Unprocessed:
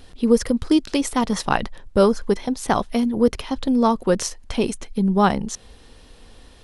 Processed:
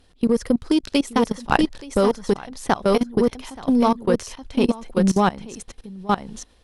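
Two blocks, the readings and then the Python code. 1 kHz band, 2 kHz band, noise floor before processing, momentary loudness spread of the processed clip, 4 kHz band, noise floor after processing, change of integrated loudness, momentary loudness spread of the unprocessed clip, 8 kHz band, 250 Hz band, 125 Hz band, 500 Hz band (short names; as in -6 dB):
0.0 dB, +1.0 dB, -47 dBFS, 10 LU, -0.5 dB, -56 dBFS, -0.5 dB, 7 LU, -5.0 dB, 0.0 dB, 0.0 dB, -0.5 dB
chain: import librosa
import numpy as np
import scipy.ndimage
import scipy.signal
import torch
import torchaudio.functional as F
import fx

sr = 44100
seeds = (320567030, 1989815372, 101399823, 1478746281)

y = x + 10.0 ** (-4.5 / 20.0) * np.pad(x, (int(877 * sr / 1000.0), 0))[:len(x)]
y = fx.cheby_harmonics(y, sr, harmonics=(4, 6, 7), levels_db=(-29, -33, -31), full_scale_db=-3.0)
y = fx.level_steps(y, sr, step_db=20)
y = y * librosa.db_to_amplitude(4.0)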